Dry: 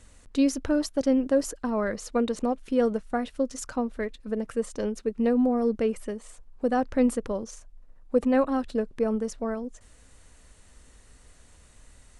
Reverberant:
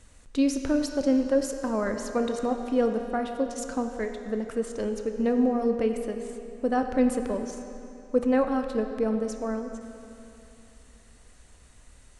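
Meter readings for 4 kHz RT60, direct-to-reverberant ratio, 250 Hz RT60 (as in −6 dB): 2.6 s, 5.5 dB, 2.9 s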